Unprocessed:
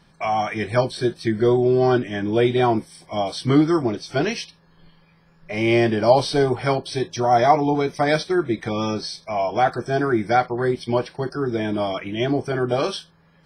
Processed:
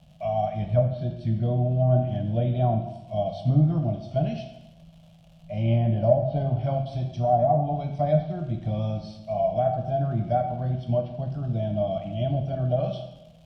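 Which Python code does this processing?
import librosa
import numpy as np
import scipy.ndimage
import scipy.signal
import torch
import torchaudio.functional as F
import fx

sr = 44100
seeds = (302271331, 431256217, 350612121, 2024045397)

y = scipy.signal.sosfilt(scipy.signal.butter(2, 40.0, 'highpass', fs=sr, output='sos'), x)
y = fx.low_shelf(y, sr, hz=92.0, db=8.0)
y = fx.dmg_crackle(y, sr, seeds[0], per_s=250.0, level_db=-29.0)
y = fx.curve_eq(y, sr, hz=(190.0, 410.0, 630.0, 920.0, 1900.0, 3000.0, 4500.0, 9100.0), db=(0, -27, 1, -20, -27, -12, -21, -27))
y = fx.env_lowpass_down(y, sr, base_hz=540.0, full_db=-14.5)
y = fx.rev_plate(y, sr, seeds[1], rt60_s=1.0, hf_ratio=0.9, predelay_ms=0, drr_db=4.0)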